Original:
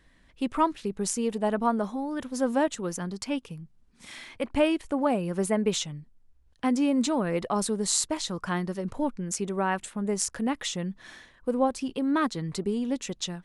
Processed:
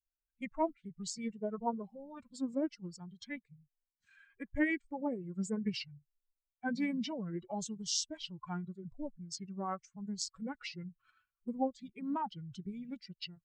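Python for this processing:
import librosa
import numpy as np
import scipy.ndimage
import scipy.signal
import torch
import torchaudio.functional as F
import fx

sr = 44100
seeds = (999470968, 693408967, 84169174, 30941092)

y = fx.bin_expand(x, sr, power=2.0)
y = fx.formant_shift(y, sr, semitones=-5)
y = y * librosa.db_to_amplitude(-5.5)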